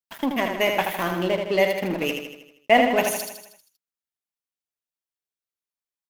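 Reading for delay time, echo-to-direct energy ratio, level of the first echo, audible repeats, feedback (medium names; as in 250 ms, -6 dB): 79 ms, -4.0 dB, -5.5 dB, 6, 54%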